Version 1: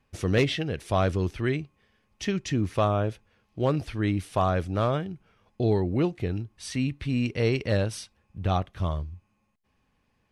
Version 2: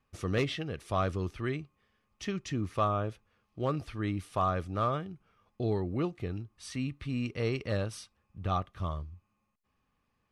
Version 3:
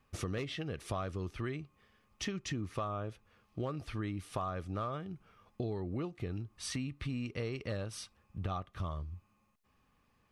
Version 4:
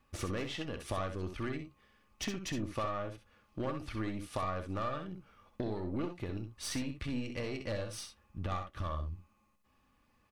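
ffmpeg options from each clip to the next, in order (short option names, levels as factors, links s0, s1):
-af "equalizer=f=1200:w=7.8:g=11,volume=0.447"
-af "acompressor=threshold=0.01:ratio=6,volume=1.78"
-af "aecho=1:1:3.5:0.32,aeval=exprs='0.0631*(cos(1*acos(clip(val(0)/0.0631,-1,1)))-cos(1*PI/2))+0.00794*(cos(4*acos(clip(val(0)/0.0631,-1,1)))-cos(4*PI/2))+0.0126*(cos(6*acos(clip(val(0)/0.0631,-1,1)))-cos(6*PI/2))+0.002*(cos(8*acos(clip(val(0)/0.0631,-1,1)))-cos(8*PI/2))':c=same,aecho=1:1:64|80:0.398|0.141"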